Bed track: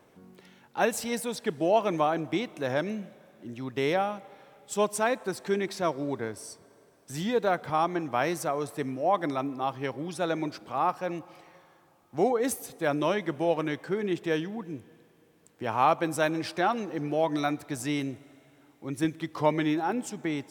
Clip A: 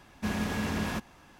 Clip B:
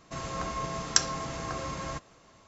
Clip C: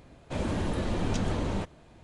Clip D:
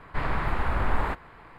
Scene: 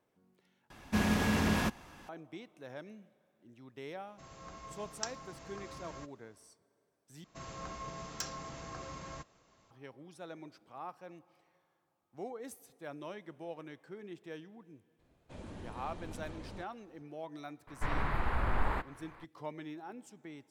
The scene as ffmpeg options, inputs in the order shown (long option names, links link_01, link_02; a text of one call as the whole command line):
ffmpeg -i bed.wav -i cue0.wav -i cue1.wav -i cue2.wav -i cue3.wav -filter_complex "[2:a]asplit=2[link_01][link_02];[0:a]volume=-18dB[link_03];[1:a]acontrast=70[link_04];[link_01]dynaudnorm=framelen=130:gausssize=7:maxgain=5dB[link_05];[link_02]asoftclip=type=tanh:threshold=-20dB[link_06];[link_03]asplit=3[link_07][link_08][link_09];[link_07]atrim=end=0.704[link_10];[link_04]atrim=end=1.39,asetpts=PTS-STARTPTS,volume=-5dB[link_11];[link_08]atrim=start=2.086:end=7.244[link_12];[link_06]atrim=end=2.47,asetpts=PTS-STARTPTS,volume=-9.5dB[link_13];[link_09]atrim=start=9.706[link_14];[link_05]atrim=end=2.47,asetpts=PTS-STARTPTS,volume=-17.5dB,afade=type=in:duration=0.004:curve=hsin,afade=type=out:start_time=2.466:duration=0.004:curve=hsin,adelay=4070[link_15];[3:a]atrim=end=2.03,asetpts=PTS-STARTPTS,volume=-17dB,afade=type=in:duration=0.004:curve=hsin,afade=type=out:start_time=2.026:duration=0.004:curve=hsin,adelay=14990[link_16];[4:a]atrim=end=1.58,asetpts=PTS-STARTPTS,volume=-6dB,afade=type=in:duration=0.004:curve=hsin,afade=type=out:start_time=1.576:duration=0.004:curve=hsin,adelay=17670[link_17];[link_10][link_11]acrossfade=duration=0.004:curve1=hsin:curve2=hsin[link_18];[link_18][link_12]acrossfade=duration=0.004:curve1=hsin:curve2=hsin[link_19];[link_19][link_13]acrossfade=duration=0.004:curve1=hsin:curve2=hsin[link_20];[link_20][link_14]acrossfade=duration=0.004:curve1=hsin:curve2=hsin[link_21];[link_21][link_15][link_16][link_17]amix=inputs=4:normalize=0" out.wav